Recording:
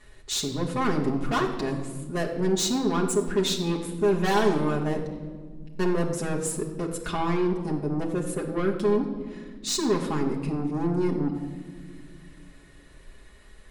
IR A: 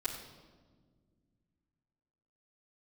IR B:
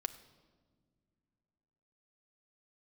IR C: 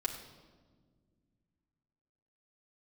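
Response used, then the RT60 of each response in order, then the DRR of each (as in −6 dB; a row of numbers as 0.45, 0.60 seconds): C; 1.6 s, non-exponential decay, 1.6 s; −12.0, 7.0, −2.5 decibels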